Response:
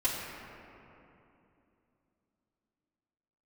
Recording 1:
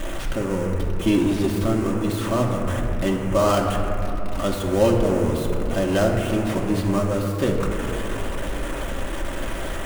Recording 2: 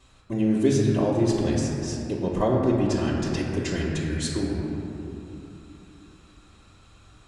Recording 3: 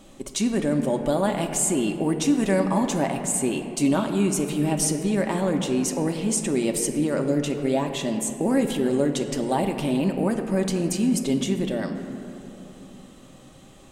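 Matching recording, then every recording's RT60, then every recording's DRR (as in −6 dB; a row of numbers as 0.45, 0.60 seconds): 2; 2.9, 2.9, 3.0 seconds; −2.0, −11.0, 3.0 decibels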